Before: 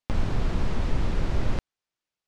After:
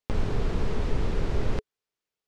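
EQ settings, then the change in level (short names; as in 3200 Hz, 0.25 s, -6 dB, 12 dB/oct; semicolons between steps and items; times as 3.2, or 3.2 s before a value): bell 430 Hz +10 dB 0.27 oct; -1.5 dB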